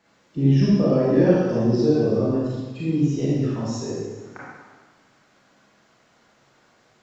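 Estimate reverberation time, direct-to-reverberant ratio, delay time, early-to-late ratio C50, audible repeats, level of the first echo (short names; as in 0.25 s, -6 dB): 1.3 s, -8.0 dB, none, -3.0 dB, none, none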